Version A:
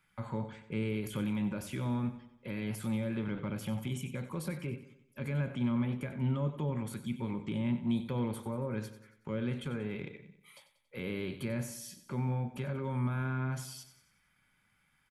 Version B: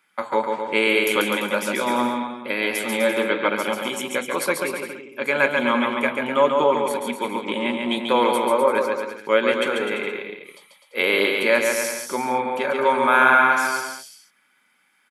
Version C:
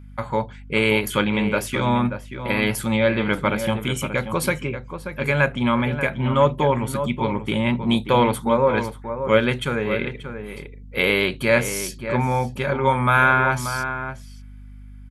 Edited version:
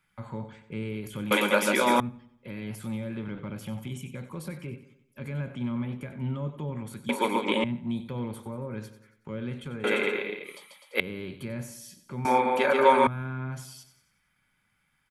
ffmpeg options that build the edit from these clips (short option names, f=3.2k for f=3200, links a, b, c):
-filter_complex "[1:a]asplit=4[a][b][c][d];[0:a]asplit=5[e][f][g][h][i];[e]atrim=end=1.312[j];[a]atrim=start=1.308:end=2.002[k];[f]atrim=start=1.998:end=7.092[l];[b]atrim=start=7.088:end=7.642[m];[g]atrim=start=7.638:end=9.842[n];[c]atrim=start=9.838:end=11.002[o];[h]atrim=start=10.998:end=12.252[p];[d]atrim=start=12.248:end=13.072[q];[i]atrim=start=13.068[r];[j][k]acrossfade=d=0.004:c1=hsin:c2=hsin[s];[s][l]acrossfade=d=0.004:c1=hsin:c2=hsin[t];[t][m]acrossfade=d=0.004:c1=hsin:c2=hsin[u];[u][n]acrossfade=d=0.004:c1=hsin:c2=hsin[v];[v][o]acrossfade=d=0.004:c1=hsin:c2=hsin[w];[w][p]acrossfade=d=0.004:c1=hsin:c2=hsin[x];[x][q]acrossfade=d=0.004:c1=hsin:c2=hsin[y];[y][r]acrossfade=d=0.004:c1=hsin:c2=hsin"